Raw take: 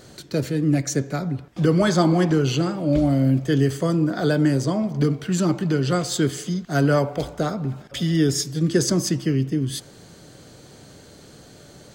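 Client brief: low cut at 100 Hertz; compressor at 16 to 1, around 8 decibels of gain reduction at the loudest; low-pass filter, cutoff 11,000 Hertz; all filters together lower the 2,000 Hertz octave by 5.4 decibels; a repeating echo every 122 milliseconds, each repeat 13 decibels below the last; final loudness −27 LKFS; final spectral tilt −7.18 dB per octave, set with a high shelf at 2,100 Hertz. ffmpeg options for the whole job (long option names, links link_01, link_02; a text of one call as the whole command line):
ffmpeg -i in.wav -af "highpass=100,lowpass=11000,equalizer=frequency=2000:width_type=o:gain=-5,highshelf=frequency=2100:gain=-5,acompressor=threshold=-22dB:ratio=16,aecho=1:1:122|244|366:0.224|0.0493|0.0108,volume=1dB" out.wav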